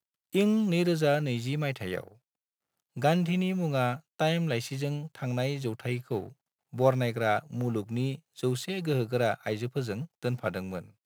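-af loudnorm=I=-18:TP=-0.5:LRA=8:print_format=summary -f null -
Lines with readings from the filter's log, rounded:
Input Integrated:    -30.2 LUFS
Input True Peak:     -10.6 dBTP
Input LRA:             2.6 LU
Input Threshold:     -40.5 LUFS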